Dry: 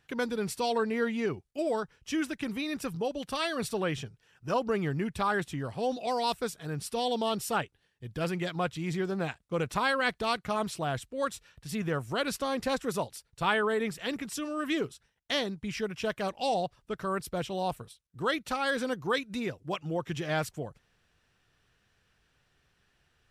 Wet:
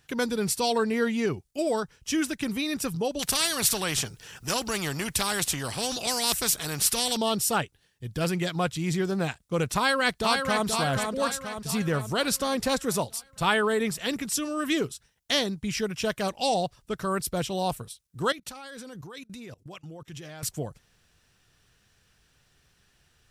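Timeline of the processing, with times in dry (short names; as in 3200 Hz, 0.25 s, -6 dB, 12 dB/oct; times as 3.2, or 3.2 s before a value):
3.19–7.17 spectral compressor 2:1
9.76–10.66 echo throw 0.48 s, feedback 55%, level -5 dB
18.32–20.43 level quantiser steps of 23 dB
whole clip: tone controls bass +3 dB, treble +9 dB; gain +3 dB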